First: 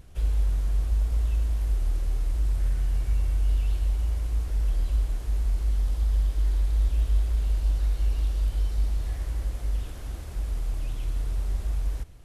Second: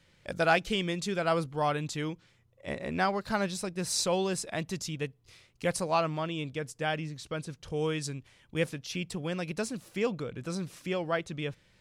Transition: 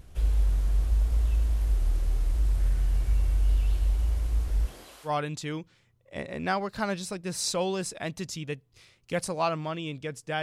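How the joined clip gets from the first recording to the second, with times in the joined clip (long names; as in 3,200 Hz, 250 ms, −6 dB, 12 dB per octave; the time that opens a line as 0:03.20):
first
0:04.65–0:05.11: high-pass filter 140 Hz → 1,200 Hz
0:05.07: continue with second from 0:01.59, crossfade 0.08 s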